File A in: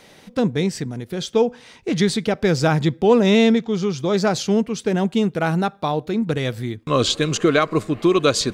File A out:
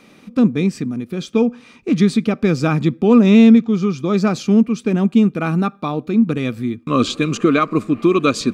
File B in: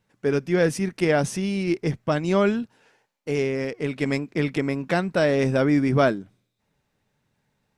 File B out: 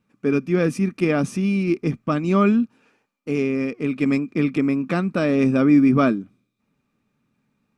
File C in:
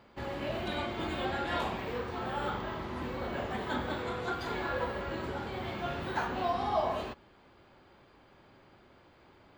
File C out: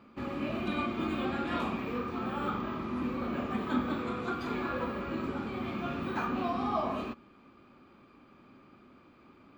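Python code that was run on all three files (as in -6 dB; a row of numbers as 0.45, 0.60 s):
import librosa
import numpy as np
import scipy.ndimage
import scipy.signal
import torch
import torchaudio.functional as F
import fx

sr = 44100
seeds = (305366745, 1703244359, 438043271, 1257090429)

y = fx.small_body(x, sr, hz=(240.0, 1200.0, 2400.0), ring_ms=25, db=14)
y = y * 10.0 ** (-5.0 / 20.0)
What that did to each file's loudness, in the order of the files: +3.5, +3.0, +1.0 LU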